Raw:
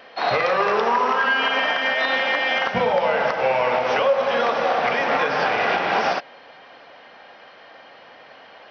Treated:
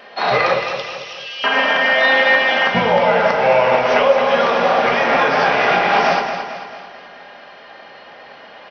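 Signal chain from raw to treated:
0:00.54–0:01.44: Butterworth high-pass 2,700 Hz 36 dB per octave
repeating echo 221 ms, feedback 48%, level −8 dB
rectangular room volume 470 cubic metres, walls furnished, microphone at 1.3 metres
level +3.5 dB

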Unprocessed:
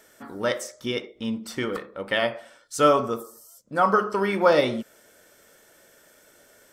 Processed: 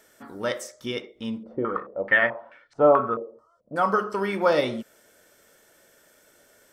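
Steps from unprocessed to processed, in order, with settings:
0:01.43–0:03.76: low-pass on a step sequencer 4.6 Hz 540–2,200 Hz
level −2.5 dB

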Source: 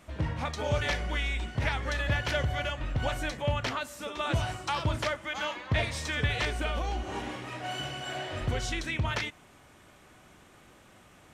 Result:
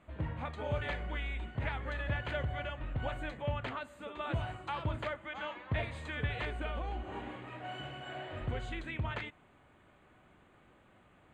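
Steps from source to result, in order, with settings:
moving average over 8 samples
level −6 dB

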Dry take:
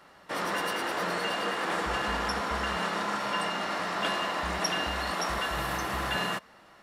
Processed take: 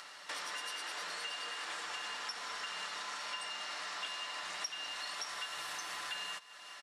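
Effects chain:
meter weighting curve ITU-R 468
upward compression, threshold −47 dBFS
comb filter 6.8 ms, depth 33%
on a send: feedback echo with a high-pass in the loop 199 ms, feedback 60%, level −24 dB
on the sum: downward compressor 4 to 1, threshold −41 dBFS, peak gain reduction 23 dB
level −1 dB

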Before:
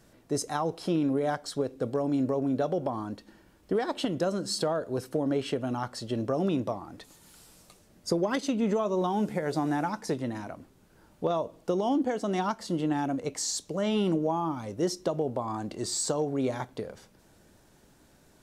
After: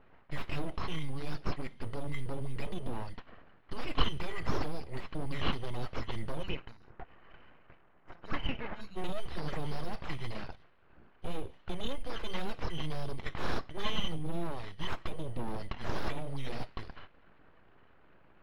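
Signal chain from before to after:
band-splitting scrambler in four parts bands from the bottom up 2341
time-frequency box erased 0:06.43–0:08.96, 1,700–5,200 Hz
low-pass that shuts in the quiet parts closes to 1,000 Hz, open at −25 dBFS
high-shelf EQ 5,300 Hz −8 dB
notch filter 4,800 Hz, Q 5.6
soft clipping −36.5 dBFS, distortion −12 dB
hollow resonant body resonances 1,500/2,600 Hz, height 17 dB
full-wave rectification
high-frequency loss of the air 420 metres
level +14.5 dB

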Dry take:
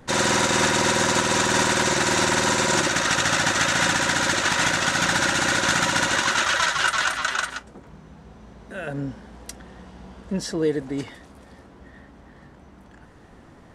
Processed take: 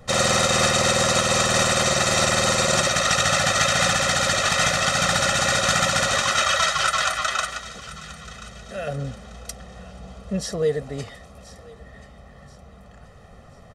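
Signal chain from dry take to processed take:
parametric band 1,700 Hz −4 dB 0.51 octaves
comb filter 1.6 ms, depth 84%
feedback echo with a high-pass in the loop 1,032 ms, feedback 39%, high-pass 1,100 Hz, level −16.5 dB

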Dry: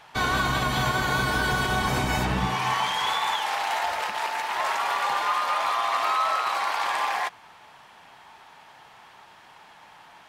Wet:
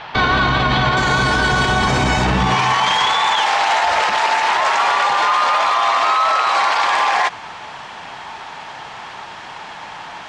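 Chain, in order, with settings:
low-pass filter 4,500 Hz 24 dB per octave, from 0:00.97 7,600 Hz
boost into a limiter +24 dB
level −6.5 dB

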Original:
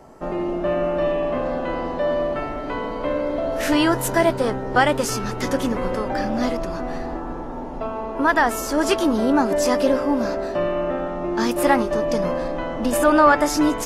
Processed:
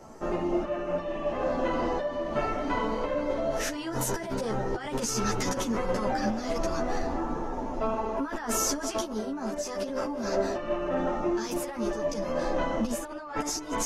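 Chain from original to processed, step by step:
parametric band 6,200 Hz +9 dB 0.55 octaves
compressor whose output falls as the input rises −25 dBFS, ratio −1
string-ensemble chorus
level −2 dB

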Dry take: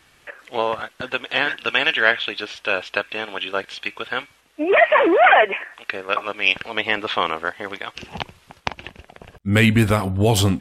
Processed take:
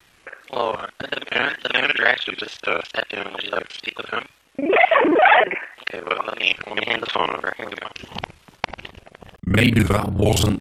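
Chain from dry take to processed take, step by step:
reversed piece by piece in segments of 33 ms
tape wow and flutter 150 cents

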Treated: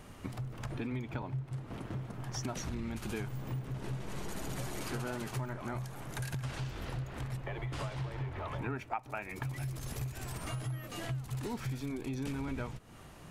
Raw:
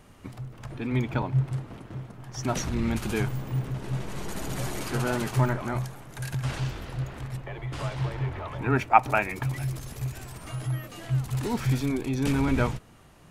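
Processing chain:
downward compressor 8 to 1, threshold −37 dBFS, peak gain reduction 25 dB
level +2 dB

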